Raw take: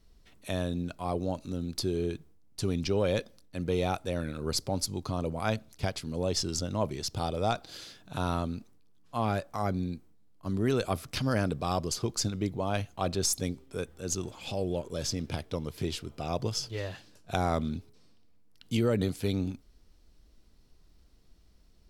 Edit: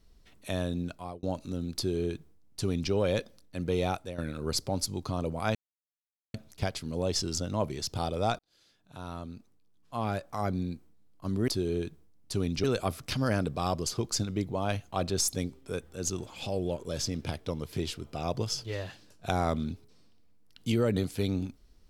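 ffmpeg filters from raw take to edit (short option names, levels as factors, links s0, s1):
-filter_complex "[0:a]asplit=7[s0][s1][s2][s3][s4][s5][s6];[s0]atrim=end=1.23,asetpts=PTS-STARTPTS,afade=t=out:st=0.88:d=0.35[s7];[s1]atrim=start=1.23:end=4.18,asetpts=PTS-STARTPTS,afade=t=in:d=0.004:c=hsin,afade=t=out:st=2.66:d=0.29:silence=0.281838[s8];[s2]atrim=start=4.18:end=5.55,asetpts=PTS-STARTPTS,afade=t=in:d=0.004:c=hsin:silence=0.281838,afade=t=out:st=1.366:d=0.004:c=hsin,apad=pad_dur=0.79[s9];[s3]atrim=start=5.55:end=7.6,asetpts=PTS-STARTPTS,afade=t=in:d=0.004:c=hsin,afade=t=out:st=2.046:d=0.004:c=hsin[s10];[s4]atrim=start=7.6:end=10.692,asetpts=PTS-STARTPTS,afade=t=in:d=2.2[s11];[s5]atrim=start=1.758:end=2.922[s12];[s6]atrim=start=10.688[s13];[s7][s8][s9][s10][s11]concat=n=5:v=0:a=1[s14];[s14][s12]acrossfade=d=0.004:c1=hsin:c2=hsin[s15];[s15][s13]acrossfade=d=0.004:c1=hsin:c2=hsin"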